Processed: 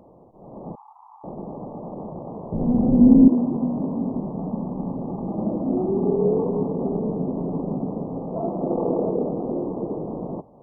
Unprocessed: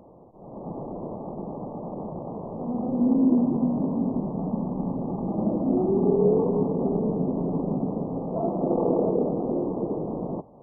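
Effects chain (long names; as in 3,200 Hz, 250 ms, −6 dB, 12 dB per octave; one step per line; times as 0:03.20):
0:00.75–0:01.24: Butterworth high-pass 820 Hz 96 dB per octave
0:02.52–0:03.28: spectral tilt −4.5 dB per octave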